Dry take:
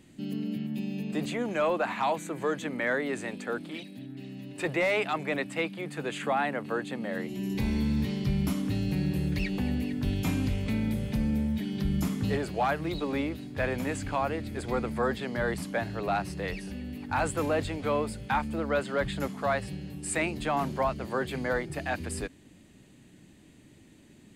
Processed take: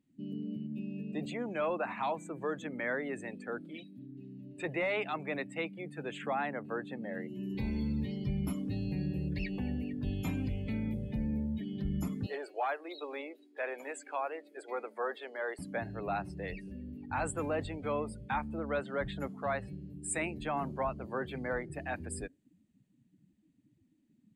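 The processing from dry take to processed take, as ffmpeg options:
-filter_complex "[0:a]asettb=1/sr,asplit=3[s0][s1][s2];[s0]atrim=end=12.264[s3];[s1]atrim=start=12.26:end=15.59,asetpts=PTS-STARTPTS,afade=t=in:d=0.004:c=qsin,afade=t=out:st=3.326:d=0.004:c=qsin,highpass=f=390:w=0.5412,highpass=f=390:w=1.3066[s4];[s2]atrim=start=15.586[s5];[s3][s4]acrossfade=d=0.004:c1=hsin:c2=qsin[s6];[s6][s5]acrossfade=d=0.004:c1=qsin:c2=hsin,afftdn=nr=21:nf=-41,adynamicequalizer=threshold=0.002:dfrequency=6900:dqfactor=0.7:tfrequency=6900:tqfactor=0.7:attack=5:release=100:ratio=0.375:range=3:mode=boostabove:tftype=highshelf,volume=0.501"

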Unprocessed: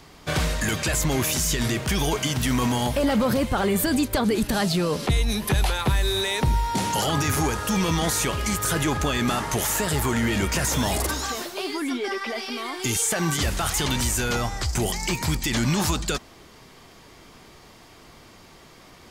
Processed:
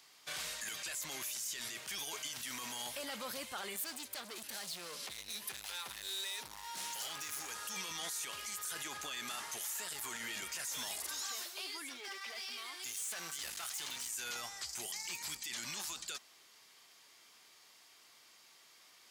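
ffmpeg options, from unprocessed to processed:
-filter_complex "[0:a]asettb=1/sr,asplit=3[s0][s1][s2];[s0]atrim=end=3.764[s3];[s1]atrim=start=3.76:end=7.51,asetpts=PTS-STARTPTS,afade=t=in:d=0.004:c=qsin,afade=t=out:st=3.746:d=0.004:c=qsin,asoftclip=type=hard:threshold=0.0596[s4];[s2]atrim=start=7.506[s5];[s3][s4]acrossfade=d=0.004:c1=hsin:c2=qsin[s6];[s6][s5]acrossfade=d=0.004:c1=qsin:c2=hsin,asettb=1/sr,asplit=3[s7][s8][s9];[s7]atrim=end=11.894[s10];[s8]atrim=start=11.89:end=14.1,asetpts=PTS-STARTPTS,afade=t=in:d=0.004:c=qsin,afade=t=out:st=2.206:d=0.004:c=qsin,aeval=exprs='clip(val(0),-1,0.0335)':c=same[s11];[s9]atrim=start=14.096[s12];[s10][s11]acrossfade=d=0.004:c1=hsin:c2=qsin[s13];[s13][s12]acrossfade=d=0.004:c1=qsin:c2=hsin,lowpass=f=3700:p=1,aderivative,alimiter=level_in=2.37:limit=0.0631:level=0:latency=1:release=19,volume=0.422"

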